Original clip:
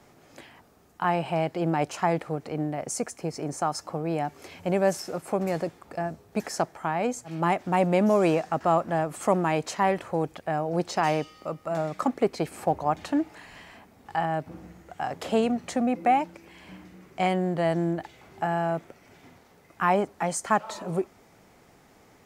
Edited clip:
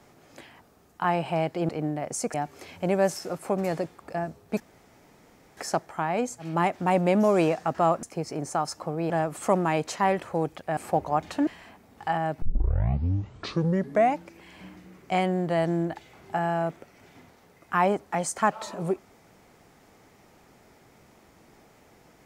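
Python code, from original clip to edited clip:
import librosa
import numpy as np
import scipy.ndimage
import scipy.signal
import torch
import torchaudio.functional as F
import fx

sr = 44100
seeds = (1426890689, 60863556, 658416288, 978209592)

y = fx.edit(x, sr, fx.cut(start_s=1.69, length_s=0.76),
    fx.move(start_s=3.1, length_s=1.07, to_s=8.89),
    fx.insert_room_tone(at_s=6.43, length_s=0.97),
    fx.cut(start_s=10.56, length_s=1.95),
    fx.cut(start_s=13.21, length_s=0.34),
    fx.tape_start(start_s=14.5, length_s=1.79), tone=tone)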